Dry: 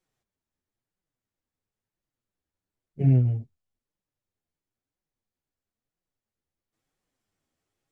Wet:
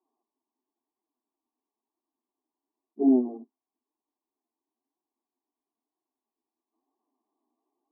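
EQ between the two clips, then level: dynamic bell 510 Hz, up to +5 dB, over -36 dBFS, Q 0.85; brick-wall FIR band-pass 220–1200 Hz; static phaser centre 530 Hz, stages 6; +7.5 dB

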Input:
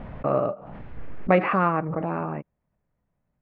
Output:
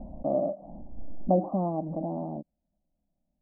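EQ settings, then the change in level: steep low-pass 730 Hz 36 dB/octave; static phaser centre 440 Hz, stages 6; 0.0 dB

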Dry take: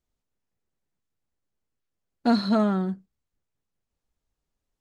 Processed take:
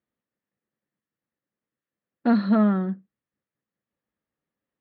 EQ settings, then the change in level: cabinet simulation 120–3500 Hz, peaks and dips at 140 Hz +4 dB, 210 Hz +8 dB, 310 Hz +6 dB, 530 Hz +7 dB, 1.2 kHz +5 dB, 1.8 kHz +9 dB; -4.0 dB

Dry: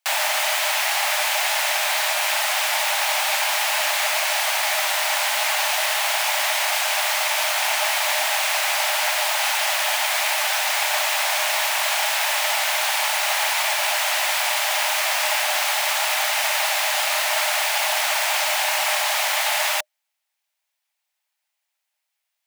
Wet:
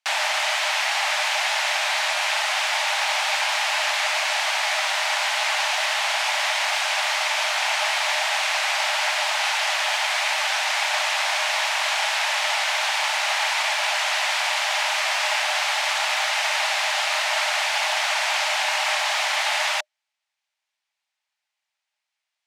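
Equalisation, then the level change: band-pass 590–6200 Hz; 0.0 dB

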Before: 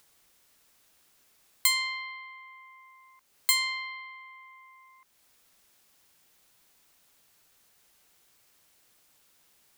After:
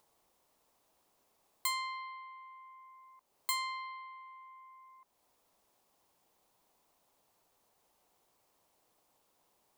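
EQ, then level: FFT filter 130 Hz 0 dB, 700 Hz +8 dB, 1 kHz +8 dB, 1.5 kHz -5 dB; -6.5 dB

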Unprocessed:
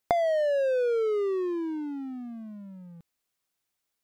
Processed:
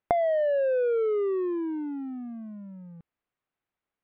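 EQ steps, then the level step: low-pass 2.8 kHz 12 dB/octave; distance through air 280 m; +1.5 dB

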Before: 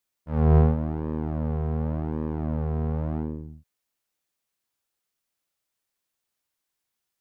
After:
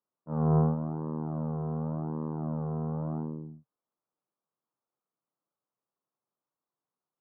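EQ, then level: elliptic band-pass 130–1200 Hz, stop band 40 dB; dynamic bell 360 Hz, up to -6 dB, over -36 dBFS, Q 0.84; 0.0 dB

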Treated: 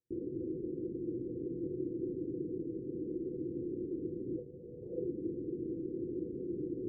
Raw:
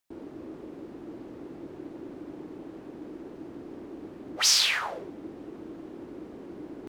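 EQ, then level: rippled Chebyshev low-pass 510 Hz, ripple 9 dB; +8.0 dB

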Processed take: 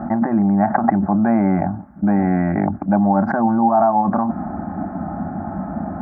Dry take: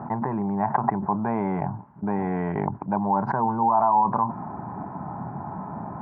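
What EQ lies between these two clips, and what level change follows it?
bass shelf 120 Hz +8.5 dB; bass shelf 380 Hz +4 dB; static phaser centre 650 Hz, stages 8; +8.5 dB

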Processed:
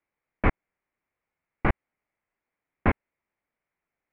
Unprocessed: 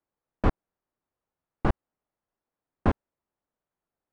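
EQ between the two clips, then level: resonant low-pass 2.2 kHz, resonance Q 5.4; 0.0 dB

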